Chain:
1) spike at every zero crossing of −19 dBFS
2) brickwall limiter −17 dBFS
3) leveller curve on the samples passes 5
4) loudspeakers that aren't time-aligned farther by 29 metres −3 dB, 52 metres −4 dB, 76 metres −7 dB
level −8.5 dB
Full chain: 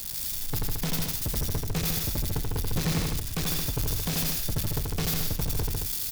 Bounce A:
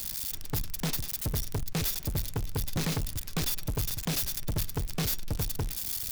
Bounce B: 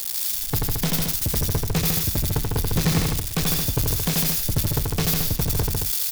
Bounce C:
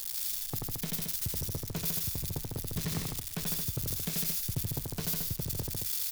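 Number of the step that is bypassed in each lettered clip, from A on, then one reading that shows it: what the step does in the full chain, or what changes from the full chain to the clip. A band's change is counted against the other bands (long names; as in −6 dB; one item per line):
4, echo-to-direct ratio 0.5 dB to none audible
2, change in crest factor +2.0 dB
3, 8 kHz band +4.0 dB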